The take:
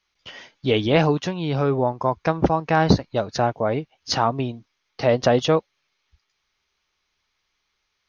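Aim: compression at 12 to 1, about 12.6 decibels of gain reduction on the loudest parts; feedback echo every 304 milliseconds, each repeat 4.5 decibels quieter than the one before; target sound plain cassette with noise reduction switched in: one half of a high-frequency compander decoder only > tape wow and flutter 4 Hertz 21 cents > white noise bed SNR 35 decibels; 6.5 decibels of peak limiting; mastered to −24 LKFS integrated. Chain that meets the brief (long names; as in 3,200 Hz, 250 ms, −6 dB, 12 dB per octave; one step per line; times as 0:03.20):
downward compressor 12 to 1, threshold −23 dBFS
brickwall limiter −17.5 dBFS
repeating echo 304 ms, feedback 60%, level −4.5 dB
one half of a high-frequency compander decoder only
tape wow and flutter 4 Hz 21 cents
white noise bed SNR 35 dB
level +5 dB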